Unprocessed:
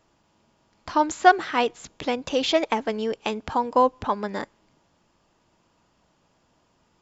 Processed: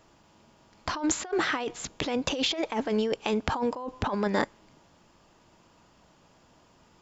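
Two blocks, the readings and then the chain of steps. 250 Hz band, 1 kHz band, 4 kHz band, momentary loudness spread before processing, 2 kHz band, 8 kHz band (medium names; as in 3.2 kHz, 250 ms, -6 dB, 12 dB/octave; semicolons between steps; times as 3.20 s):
-1.0 dB, -11.0 dB, -1.5 dB, 12 LU, -5.0 dB, no reading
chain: compressor with a negative ratio -29 dBFS, ratio -1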